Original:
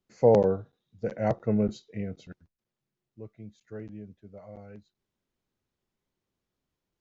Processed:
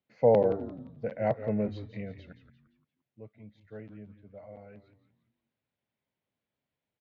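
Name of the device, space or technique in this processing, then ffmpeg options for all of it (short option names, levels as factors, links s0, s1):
frequency-shifting delay pedal into a guitar cabinet: -filter_complex "[0:a]asplit=5[s0][s1][s2][s3][s4];[s1]adelay=173,afreqshift=-110,volume=0.299[s5];[s2]adelay=346,afreqshift=-220,volume=0.119[s6];[s3]adelay=519,afreqshift=-330,volume=0.0479[s7];[s4]adelay=692,afreqshift=-440,volume=0.0191[s8];[s0][s5][s6][s7][s8]amix=inputs=5:normalize=0,highpass=110,equalizer=f=190:t=q:w=4:g=-4,equalizer=f=360:t=q:w=4:g=-9,equalizer=f=600:t=q:w=4:g=3,equalizer=f=1200:t=q:w=4:g=-5,equalizer=f=2200:t=q:w=4:g=3,lowpass=f=3800:w=0.5412,lowpass=f=3800:w=1.3066,volume=0.841"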